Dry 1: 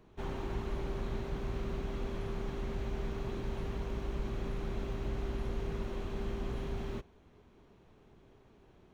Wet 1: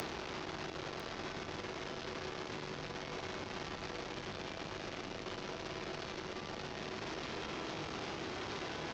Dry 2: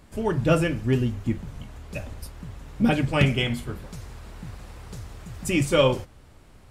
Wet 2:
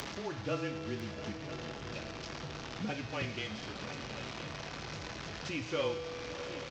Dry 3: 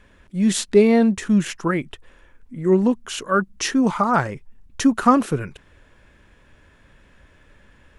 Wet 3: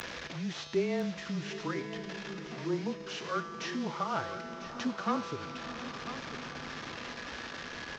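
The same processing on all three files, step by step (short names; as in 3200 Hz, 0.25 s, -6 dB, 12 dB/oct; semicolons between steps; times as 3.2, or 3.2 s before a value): delta modulation 32 kbps, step -26 dBFS; tone controls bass -6 dB, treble -6 dB; resonator 170 Hz, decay 1.8 s, mix 80%; diffused feedback echo 0.722 s, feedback 67%, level -15.5 dB; upward compressor, threshold -33 dBFS; frequency shift -21 Hz; HPF 63 Hz 12 dB/oct; high shelf 5000 Hz +9 dB; echo 0.998 s -11.5 dB; gain -1.5 dB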